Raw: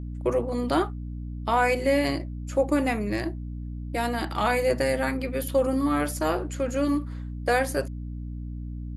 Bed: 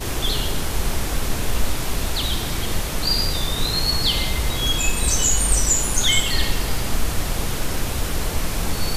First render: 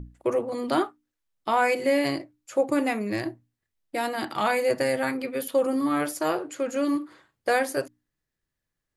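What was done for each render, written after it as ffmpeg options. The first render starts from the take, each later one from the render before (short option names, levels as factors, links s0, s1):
-af "bandreject=f=60:t=h:w=6,bandreject=f=120:t=h:w=6,bandreject=f=180:t=h:w=6,bandreject=f=240:t=h:w=6,bandreject=f=300:t=h:w=6"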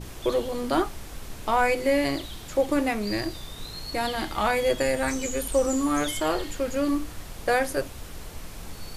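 -filter_complex "[1:a]volume=0.158[s0];[0:a][s0]amix=inputs=2:normalize=0"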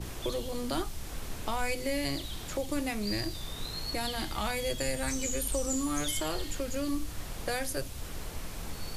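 -filter_complex "[0:a]acrossover=split=180|3000[s0][s1][s2];[s1]acompressor=threshold=0.0126:ratio=2.5[s3];[s0][s3][s2]amix=inputs=3:normalize=0"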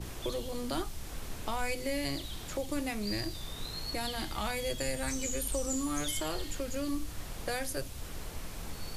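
-af "volume=0.794"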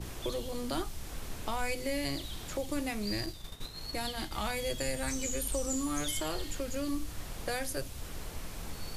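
-filter_complex "[0:a]asettb=1/sr,asplit=3[s0][s1][s2];[s0]atrim=end=3.264[s3];[s1]atrim=start=3.26:end=4.32,asetpts=PTS-STARTPTS,afade=t=in:d=0.004:c=qsin,afade=t=out:st=1.056:d=0.004:c=qsin,agate=range=0.0224:threshold=0.0178:ratio=3:release=100:detection=peak[s4];[s2]atrim=start=4.316[s5];[s3][s4]acrossfade=d=0.004:c1=hsin:c2=qsin[s6];[s6][s5]acrossfade=d=0.004:c1=qsin:c2=hsin"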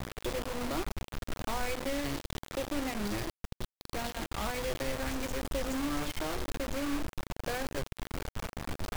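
-af "adynamicsmooth=sensitivity=2.5:basefreq=1800,acrusher=bits=5:mix=0:aa=0.000001"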